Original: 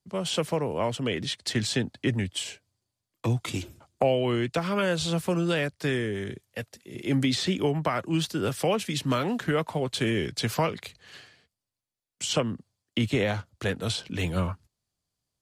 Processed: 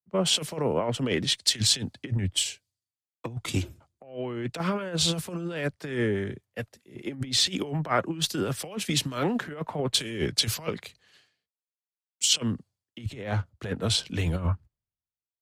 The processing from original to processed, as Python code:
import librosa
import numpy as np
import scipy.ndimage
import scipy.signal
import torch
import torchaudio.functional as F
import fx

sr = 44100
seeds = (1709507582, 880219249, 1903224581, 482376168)

y = fx.over_compress(x, sr, threshold_db=-28.0, ratio=-0.5)
y = fx.cheby_harmonics(y, sr, harmonics=(2,), levels_db=(-19,), full_scale_db=-13.5)
y = fx.band_widen(y, sr, depth_pct=100)